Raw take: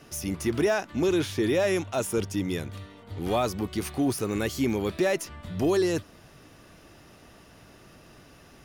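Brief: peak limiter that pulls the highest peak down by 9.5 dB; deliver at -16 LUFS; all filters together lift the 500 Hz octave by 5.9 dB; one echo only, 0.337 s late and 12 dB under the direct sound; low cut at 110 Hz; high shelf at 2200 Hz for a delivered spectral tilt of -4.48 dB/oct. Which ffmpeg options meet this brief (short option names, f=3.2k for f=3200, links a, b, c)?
-af "highpass=110,equalizer=f=500:t=o:g=8,highshelf=f=2.2k:g=4,alimiter=limit=-18dB:level=0:latency=1,aecho=1:1:337:0.251,volume=11.5dB"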